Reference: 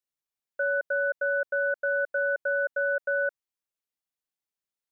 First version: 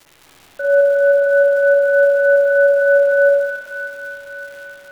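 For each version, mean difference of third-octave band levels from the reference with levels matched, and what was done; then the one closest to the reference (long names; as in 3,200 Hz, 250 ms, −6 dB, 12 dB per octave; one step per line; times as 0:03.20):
5.0 dB: low-pass filter 1,100 Hz 6 dB per octave
surface crackle 310 per second −39 dBFS
on a send: echo with a time of its own for lows and highs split 840 Hz, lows 81 ms, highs 586 ms, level −7 dB
on the sum: spring reverb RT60 1.4 s, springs 46/53 ms, chirp 30 ms, DRR −3 dB
level +5.5 dB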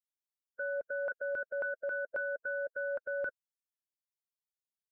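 2.5 dB: spectral dynamics exaggerated over time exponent 2
low-shelf EQ 430 Hz +10 dB
auto-filter notch saw up 3.7 Hz 550–1,500 Hz
brickwall limiter −26 dBFS, peak gain reduction 7 dB
level −3.5 dB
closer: second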